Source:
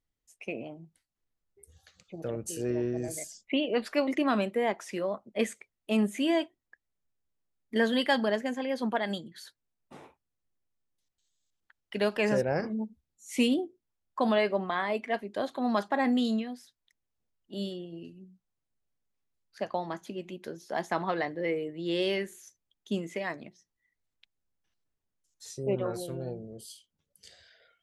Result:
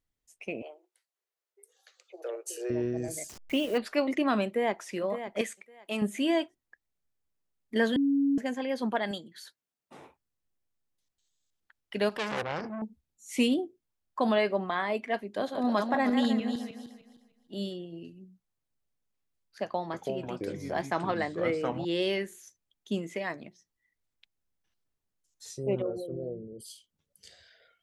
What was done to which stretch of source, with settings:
0:00.62–0:02.70: Chebyshev high-pass filter 370 Hz, order 6
0:03.29–0:03.78: hold until the input has moved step −42 dBFS
0:04.45–0:04.86: delay throw 560 ms, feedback 25%, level −10 dB
0:05.41–0:06.02: low-shelf EQ 410 Hz −12 dB
0:07.96–0:08.38: beep over 279 Hz −22 dBFS
0:09.11–0:09.98: high-pass filter 280 Hz 6 dB per octave
0:12.09–0:12.82: saturating transformer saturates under 2,300 Hz
0:15.18–0:17.57: feedback delay that plays each chunk backwards 153 ms, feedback 47%, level −6 dB
0:19.64–0:21.85: delay with pitch and tempo change per echo 294 ms, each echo −5 semitones, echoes 2
0:25.82–0:26.66: spectral envelope exaggerated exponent 2

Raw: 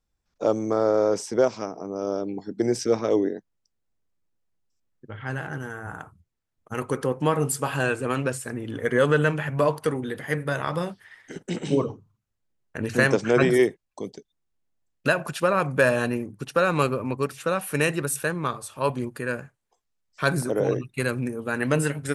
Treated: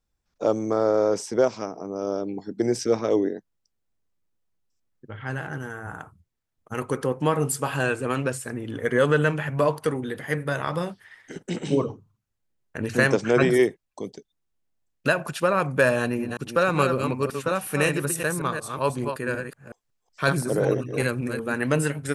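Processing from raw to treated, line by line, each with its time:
0:16.00–0:21.54: delay that plays each chunk backwards 186 ms, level −6 dB

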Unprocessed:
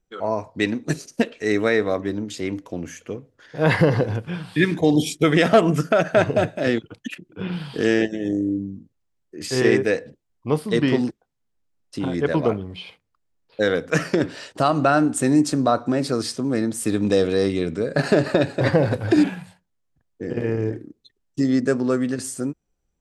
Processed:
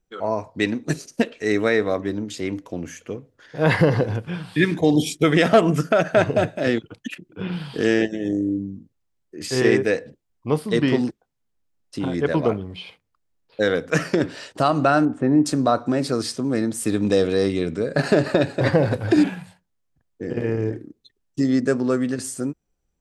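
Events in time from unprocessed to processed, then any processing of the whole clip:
0:15.05–0:15.46: low-pass filter 1,400 Hz

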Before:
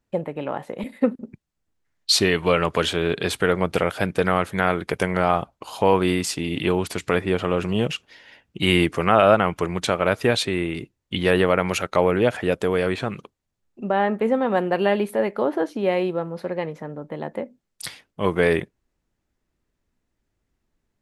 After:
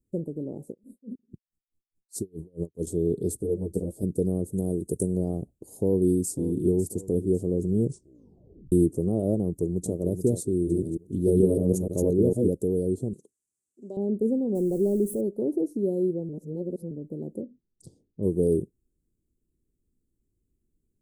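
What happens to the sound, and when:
0:00.70–0:02.87: tremolo with a sine in dB 4.7 Hz, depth 39 dB
0:03.37–0:04.03: string-ensemble chorus
0:04.53–0:05.16: parametric band 8,700 Hz +9.5 dB 0.95 octaves
0:05.70–0:06.33: delay throw 550 ms, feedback 40%, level −13 dB
0:07.81: tape stop 0.91 s
0:09.42–0:09.97: delay throw 430 ms, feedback 30%, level −8 dB
0:10.52–0:12.49: delay that plays each chunk backwards 151 ms, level −1 dB
0:13.13–0:13.97: meter weighting curve ITU-R 468
0:14.55–0:15.21: converter with a step at zero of −32.5 dBFS
0:16.29–0:16.91: reverse
0:17.42–0:18.23: high-frequency loss of the air 150 metres
whole clip: Chebyshev band-stop filter 390–8,100 Hz, order 3

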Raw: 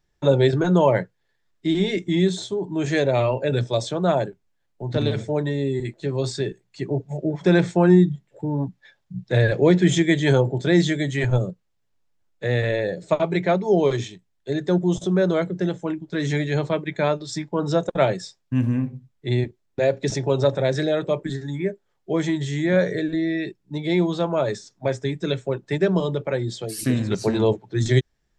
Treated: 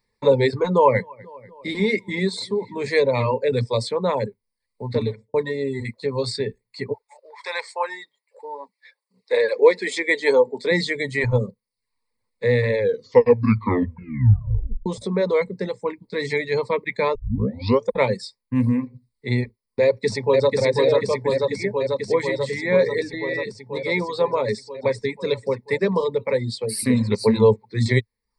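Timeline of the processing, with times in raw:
0:00.72–0:03.27: feedback echo with a low-pass in the loop 244 ms, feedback 59%, low-pass 4,000 Hz, level −20.5 dB
0:04.86–0:05.34: fade out and dull
0:06.92–0:10.70: high-pass filter 980 Hz → 240 Hz 24 dB per octave
0:12.74: tape stop 2.12 s
0:17.15: tape start 0.76 s
0:19.84–0:20.57: delay throw 490 ms, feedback 80%, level −1.5 dB
whole clip: EQ curve with evenly spaced ripples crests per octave 0.93, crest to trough 17 dB; reverb reduction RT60 0.51 s; low-shelf EQ 100 Hz −9 dB

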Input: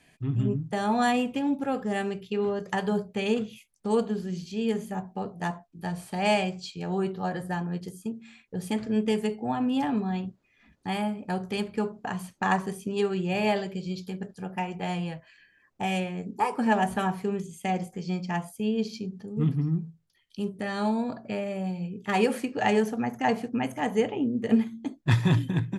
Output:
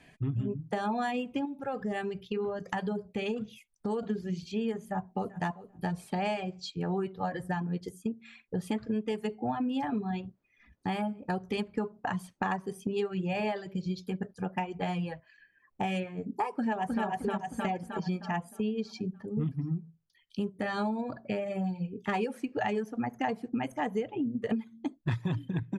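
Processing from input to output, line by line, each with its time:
0:01.45–0:04.03: downward compressor 2 to 1, threshold −34 dBFS
0:04.78–0:05.40: delay throw 390 ms, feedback 25%, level −11.5 dB
0:16.50–0:17.06: delay throw 310 ms, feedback 50%, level 0 dB
whole clip: reverb reduction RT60 1.4 s; high-shelf EQ 4,700 Hz −10.5 dB; downward compressor 6 to 1, threshold −33 dBFS; level +4.5 dB

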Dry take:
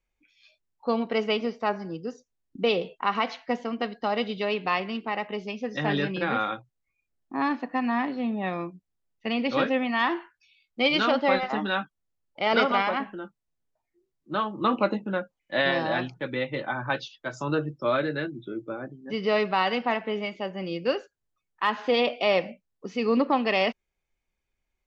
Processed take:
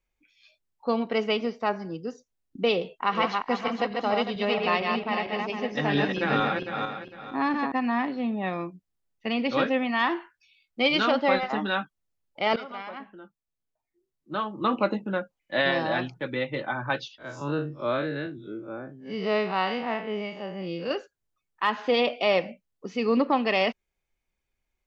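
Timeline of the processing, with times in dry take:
0:02.77–0:07.72: feedback delay that plays each chunk backwards 227 ms, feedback 53%, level −3 dB
0:12.56–0:15.02: fade in, from −18 dB
0:17.18–0:20.91: spectrum smeared in time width 92 ms

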